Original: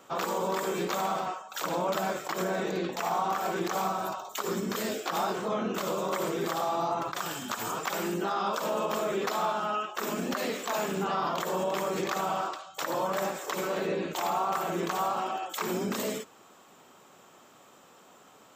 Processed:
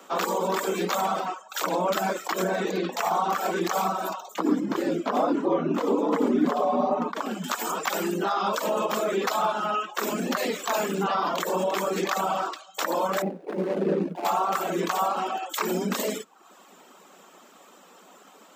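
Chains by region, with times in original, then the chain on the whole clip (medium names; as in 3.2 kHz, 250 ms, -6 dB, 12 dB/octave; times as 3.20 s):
4.34–7.44 s: tilt EQ -4.5 dB/octave + frequency shift -93 Hz
13.22–14.25 s: median filter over 41 samples + tilt EQ -2.5 dB/octave
whole clip: reverb removal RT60 0.64 s; steep high-pass 170 Hz 96 dB/octave; trim +5.5 dB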